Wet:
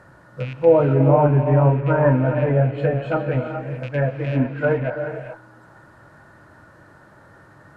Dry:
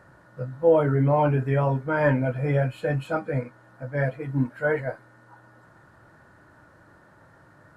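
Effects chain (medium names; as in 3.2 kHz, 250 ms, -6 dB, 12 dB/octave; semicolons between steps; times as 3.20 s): rattle on loud lows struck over -34 dBFS, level -30 dBFS; low-pass that closes with the level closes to 1.2 kHz, closed at -21 dBFS; gated-style reverb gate 450 ms rising, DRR 5.5 dB; trim +4.5 dB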